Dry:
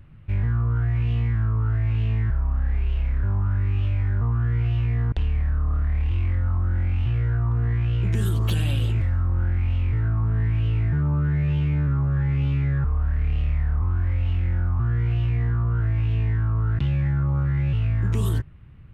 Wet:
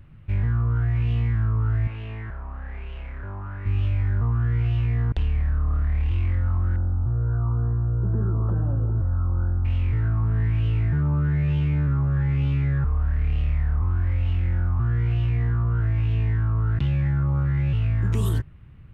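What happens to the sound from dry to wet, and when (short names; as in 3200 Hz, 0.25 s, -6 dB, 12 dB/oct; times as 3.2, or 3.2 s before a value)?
1.87–3.66 tone controls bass -12 dB, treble -11 dB
6.76–9.65 elliptic low-pass 1400 Hz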